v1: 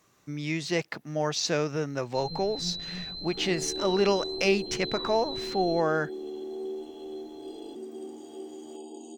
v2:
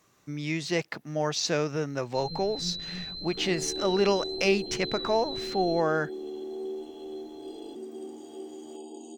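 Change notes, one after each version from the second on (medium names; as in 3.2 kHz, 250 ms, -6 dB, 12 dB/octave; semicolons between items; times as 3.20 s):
first sound: add Butterworth band-stop 890 Hz, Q 1.3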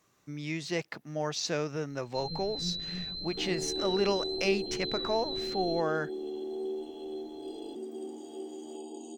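speech -4.5 dB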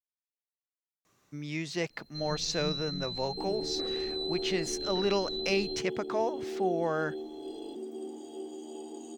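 speech: entry +1.05 s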